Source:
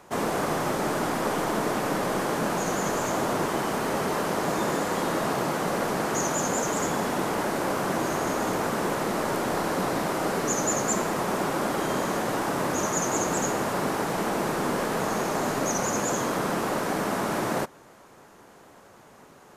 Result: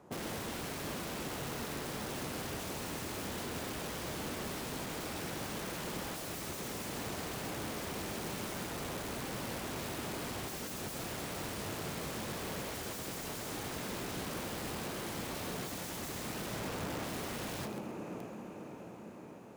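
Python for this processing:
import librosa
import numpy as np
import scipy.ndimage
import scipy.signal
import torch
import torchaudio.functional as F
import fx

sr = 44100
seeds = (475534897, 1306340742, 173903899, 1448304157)

y = fx.rattle_buzz(x, sr, strikes_db=-36.0, level_db=-21.0)
y = fx.low_shelf(y, sr, hz=430.0, db=-4.5, at=(8.64, 9.72))
y = fx.lowpass(y, sr, hz=1500.0, slope=24, at=(16.56, 17.04))
y = fx.echo_diffused(y, sr, ms=596, feedback_pct=61, wet_db=-13)
y = fx.rev_schroeder(y, sr, rt60_s=0.64, comb_ms=26, drr_db=9.0)
y = (np.mod(10.0 ** (24.5 / 20.0) * y + 1.0, 2.0) - 1.0) / 10.0 ** (24.5 / 20.0)
y = fx.highpass(y, sr, hz=110.0, slope=6)
y = fx.tilt_shelf(y, sr, db=8.0, hz=640.0)
y = fx.echo_crushed(y, sr, ms=129, feedback_pct=35, bits=9, wet_db=-11.0)
y = y * librosa.db_to_amplitude(-7.5)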